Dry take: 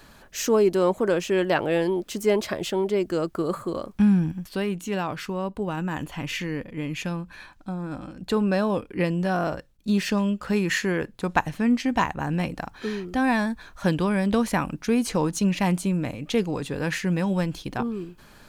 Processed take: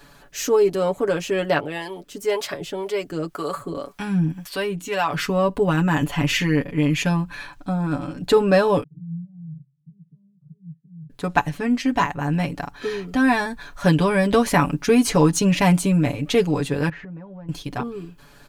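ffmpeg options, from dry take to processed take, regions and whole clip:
-filter_complex "[0:a]asettb=1/sr,asplit=3[s0][s1][s2];[s0]atrim=end=1.604[s3];[s1]atrim=start=1.6:end=5.14,asetpts=PTS-STARTPTS,afade=t=in:d=0.004:c=qsin,afade=t=out:st=3.536:d=0.004:c=qsin,lowshelf=f=450:g=-6.5,acrossover=split=470[s4][s5];[s4]aeval=exprs='val(0)*(1-0.7/2+0.7/2*cos(2*PI*1.9*n/s))':c=same[s6];[s5]aeval=exprs='val(0)*(1-0.7/2-0.7/2*cos(2*PI*1.9*n/s))':c=same[s7];[s6][s7]amix=inputs=2:normalize=0[s8];[s2]atrim=start=5.136[s9];[s3][s8]acrossfade=d=0.004:c1=hsin:c2=qsin[s10];[s10][s9]acrossfade=d=0.004:c1=qsin:c2=hsin,asettb=1/sr,asplit=3[s11][s12][s13];[s11]atrim=end=8.834[s14];[s12]atrim=start=8.83:end=11.1,asetpts=PTS-STARTPTS,afade=t=in:d=0.004:c=qsin,afade=t=out:st=2.266:d=0.004:c=qsin,acompressor=threshold=0.0251:ratio=10:attack=3.2:release=140:knee=1:detection=peak,asuperpass=centerf=150:order=4:qfactor=4.8,aecho=1:1:6.7:0.94,atrim=end_sample=100107[s15];[s13]atrim=start=11.096[s16];[s14][s15]acrossfade=d=0.004:c1=hsin:c2=qsin[s17];[s17][s16]acrossfade=d=0.004:c1=qsin:c2=hsin,asettb=1/sr,asplit=3[s18][s19][s20];[s18]atrim=end=16.894[s21];[s19]atrim=start=16.89:end=17.49,asetpts=PTS-STARTPTS,afade=t=in:d=0.004:c=qsin,afade=t=out:st=0.596:d=0.004:c=qsin,lowpass=1200,acompressor=threshold=0.0126:ratio=6:attack=3.2:release=140:knee=1:detection=peak[s22];[s20]atrim=start=17.486[s23];[s21][s22]acrossfade=d=0.004:c1=hsin:c2=qsin[s24];[s24][s23]acrossfade=d=0.004:c1=qsin:c2=hsin,aecho=1:1:7:0.79,dynaudnorm=f=260:g=17:m=2.66,volume=0.891"

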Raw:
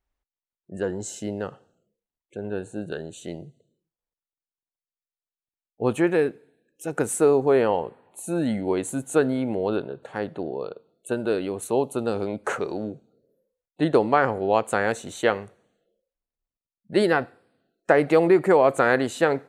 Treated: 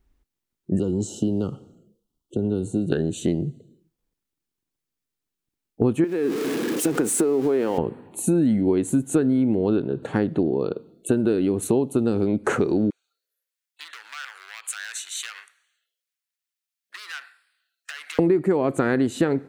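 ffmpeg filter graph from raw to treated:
-filter_complex "[0:a]asettb=1/sr,asplit=3[s0][s1][s2];[s0]atrim=end=0.794[s3];[s1]atrim=start=0.79:end=2.92,asetpts=PTS-STARTPTS,afade=t=in:d=0.004:c=qsin,afade=t=out:st=2.126:d=0.004:c=qsin,acrossover=split=200|520|1800|4500[s4][s5][s6][s7][s8];[s4]acompressor=threshold=0.00562:ratio=3[s9];[s5]acompressor=threshold=0.00794:ratio=3[s10];[s6]acompressor=threshold=0.00398:ratio=3[s11];[s7]acompressor=threshold=0.00178:ratio=3[s12];[s8]acompressor=threshold=0.00355:ratio=3[s13];[s9][s10][s11][s12][s13]amix=inputs=5:normalize=0,asuperstop=centerf=2000:order=20:qfactor=1.5[s14];[s2]atrim=start=2.916[s15];[s3][s14]acrossfade=d=0.004:c1=hsin:c2=qsin[s16];[s16][s15]acrossfade=d=0.004:c1=qsin:c2=hsin,asettb=1/sr,asplit=3[s17][s18][s19];[s17]atrim=end=6.044[s20];[s18]atrim=start=6.04:end=7.78,asetpts=PTS-STARTPTS,afade=t=in:d=0.004:c=qsin,afade=t=out:st=1.736:d=0.004:c=qsin,aeval=exprs='val(0)+0.5*0.0266*sgn(val(0))':c=same,highpass=280,acompressor=threshold=0.0447:ratio=2.5:attack=3.2:release=140:knee=1:detection=peak[s21];[s19]atrim=start=7.776[s22];[s20][s21]acrossfade=d=0.004:c1=hsin:c2=qsin[s23];[s23][s22]acrossfade=d=0.004:c1=qsin:c2=hsin,asettb=1/sr,asplit=3[s24][s25][s26];[s24]atrim=end=12.904[s27];[s25]atrim=start=12.9:end=18.19,asetpts=PTS-STARTPTS,afade=t=in:d=0.004:c=qsin,afade=t=out:st=5.286:d=0.004:c=qsin,acompressor=threshold=0.0631:ratio=16:attack=3.2:release=140:knee=1:detection=peak,asoftclip=type=hard:threshold=0.0355,highpass=f=1500:w=0.5412,highpass=f=1500:w=1.3066[s28];[s26]atrim=start=18.186[s29];[s27][s28]acrossfade=d=0.004:c1=hsin:c2=qsin[s30];[s30][s29]acrossfade=d=0.004:c1=qsin:c2=hsin,lowshelf=f=430:t=q:w=1.5:g=9,acompressor=threshold=0.0501:ratio=6,volume=2.51"

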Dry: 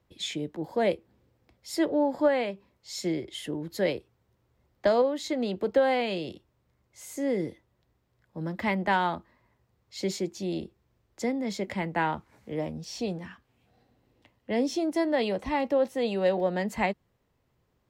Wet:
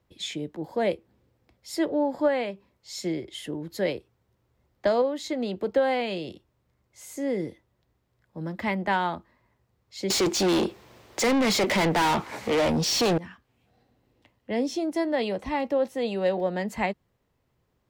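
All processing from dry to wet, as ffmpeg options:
-filter_complex "[0:a]asettb=1/sr,asplit=3[s0][s1][s2];[s0]atrim=end=10.104[s3];[s1]atrim=start=10.1:end=13.18,asetpts=PTS-STARTPTS,afade=t=in:d=0.004:c=qsin,afade=t=out:st=3.076:d=0.004:c=qsin,asplit=2[s4][s5];[s5]highpass=f=720:p=1,volume=56.2,asoftclip=type=tanh:threshold=0.178[s6];[s4][s6]amix=inputs=2:normalize=0,lowpass=f=4900:p=1,volume=0.501,equalizer=f=1500:w=1.4:g=-3.5[s7];[s2]atrim=start=13.176[s8];[s3][s7]acrossfade=d=0.004:c1=hsin:c2=qsin[s9];[s9][s8]acrossfade=d=0.004:c1=qsin:c2=hsin"

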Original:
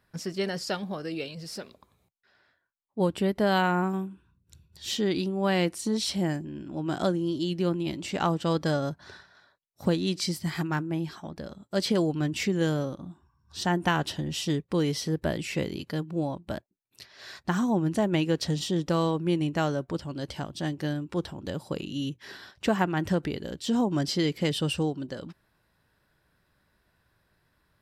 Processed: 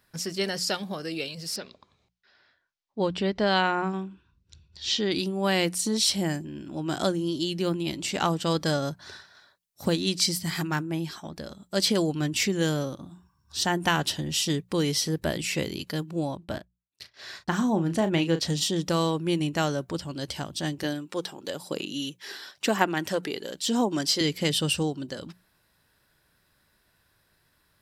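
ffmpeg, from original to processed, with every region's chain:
-filter_complex "[0:a]asettb=1/sr,asplit=3[s0][s1][s2];[s0]atrim=end=1.564[s3];[s1]atrim=start=1.56:end=5.12,asetpts=PTS-STARTPTS,afade=t=in:d=0.004:c=qsin,afade=t=out:st=3.556:d=0.004:c=qsin,lowpass=f=5600:w=0.5412,lowpass=f=5600:w=1.3066,asubboost=boost=3.5:cutoff=67[s4];[s2]atrim=start=5.116[s5];[s3][s4]acrossfade=d=0.004:c1=hsin:c2=qsin[s6];[s6][s5]acrossfade=d=0.004:c1=qsin:c2=hsin,asettb=1/sr,asplit=3[s7][s8][s9];[s7]atrim=end=16.374[s10];[s8]atrim=start=16.37:end=18.45,asetpts=PTS-STARTPTS,afade=t=in:d=0.004:c=qsin,afade=t=out:st=2.076:d=0.004:c=qsin,aemphasis=mode=reproduction:type=cd,agate=range=0.0562:threshold=0.00178:ratio=16:release=100:detection=peak,asplit=2[s11][s12];[s12]adelay=36,volume=0.316[s13];[s11][s13]amix=inputs=2:normalize=0,atrim=end_sample=91728[s14];[s9]atrim=start=18.446[s15];[s10][s14]acrossfade=d=0.004:c1=hsin:c2=qsin[s16];[s16][s15]acrossfade=d=0.004:c1=qsin:c2=hsin,asettb=1/sr,asplit=3[s17][s18][s19];[s17]atrim=end=20.834[s20];[s18]atrim=start=20.83:end=24.21,asetpts=PTS-STARTPTS,afade=t=in:d=0.004:c=qsin,afade=t=out:st=3.376:d=0.004:c=qsin,aphaser=in_gain=1:out_gain=1:delay=2.5:decay=0.3:speed=1:type=sinusoidal,highpass=250[s21];[s19]atrim=start=24.206[s22];[s20][s21]acrossfade=d=0.004:c1=hsin:c2=qsin[s23];[s23][s22]acrossfade=d=0.004:c1=qsin:c2=hsin,highshelf=f=2900:g=10,bandreject=f=60:t=h:w=6,bandreject=f=120:t=h:w=6,bandreject=f=180:t=h:w=6"

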